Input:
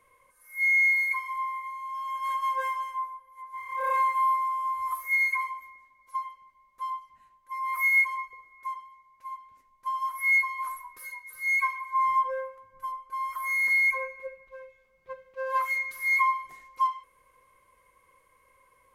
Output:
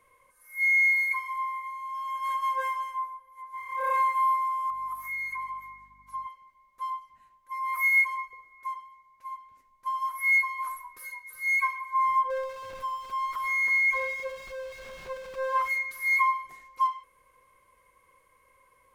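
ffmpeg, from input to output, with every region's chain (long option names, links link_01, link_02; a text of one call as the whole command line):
ffmpeg -i in.wav -filter_complex "[0:a]asettb=1/sr,asplit=3[link_01][link_02][link_03];[link_01]atrim=end=4.704[link_04];[link_02]atrim=start=4.7:end=6.27,asetpts=PTS-STARTPTS,afade=type=in:duration=0.004:curve=qsin,afade=type=out:start_time=1.566:duration=0.004:curve=qsin,lowshelf=frequency=730:width_type=q:width=3:gain=-8.5,acompressor=threshold=-35dB:ratio=3:attack=3.2:release=140:knee=1:detection=peak,aeval=exprs='val(0)+0.000794*(sin(2*PI*50*n/s)+sin(2*PI*2*50*n/s)/2+sin(2*PI*3*50*n/s)/3+sin(2*PI*4*50*n/s)/4+sin(2*PI*5*50*n/s)/5)':channel_layout=same[link_05];[link_03]atrim=start=6.266[link_06];[link_04][link_05]acrossfade=duration=0.004:curve1=hsin:curve2=qsin[link_07];[link_07][link_06]acrossfade=duration=0.004:curve1=qsin:curve2=hsin,asettb=1/sr,asplit=3[link_08][link_09][link_10];[link_08]atrim=end=12.304[link_11];[link_09]atrim=start=12.3:end=15.69,asetpts=PTS-STARTPTS,afade=type=in:duration=0.004:curve=qsin,afade=type=out:start_time=3.386:duration=0.004:curve=qsin,aeval=exprs='val(0)+0.5*0.0141*sgn(val(0))':channel_layout=same,lowpass=frequency=3400:poles=1,aecho=1:1:325:0.2,atrim=end_sample=149499[link_12];[link_10]atrim=start=15.686[link_13];[link_11][link_12]acrossfade=duration=0.004:curve1=hsin:curve2=qsin[link_14];[link_14][link_13]acrossfade=duration=0.004:curve1=qsin:curve2=hsin" out.wav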